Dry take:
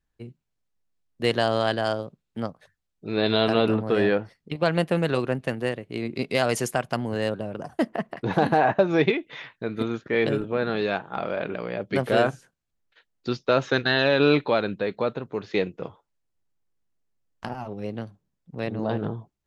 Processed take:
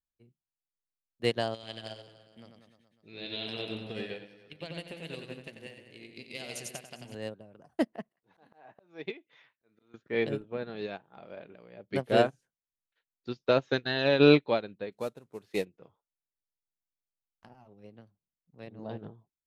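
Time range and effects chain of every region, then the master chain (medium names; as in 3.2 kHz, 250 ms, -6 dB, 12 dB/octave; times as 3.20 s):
1.54–7.15 s: resonant high shelf 1.8 kHz +8.5 dB, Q 1.5 + compression 2:1, threshold -28 dBFS + reverse bouncing-ball echo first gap 90 ms, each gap 1.1×, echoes 5
8.09–9.94 s: high-pass 77 Hz + bass shelf 300 Hz -7.5 dB + slow attack 421 ms
14.92–15.65 s: CVSD coder 64 kbps + treble shelf 6.8 kHz +5 dB
whole clip: dynamic bell 1.3 kHz, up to -5 dB, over -40 dBFS, Q 1.5; upward expansion 2.5:1, over -32 dBFS; trim +1.5 dB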